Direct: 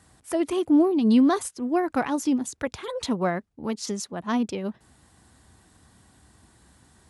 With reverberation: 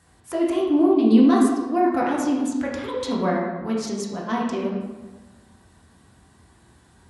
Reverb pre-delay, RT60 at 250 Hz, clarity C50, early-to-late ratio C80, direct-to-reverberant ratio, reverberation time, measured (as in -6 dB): 6 ms, 1.5 s, 2.0 dB, 4.0 dB, -4.0 dB, 1.3 s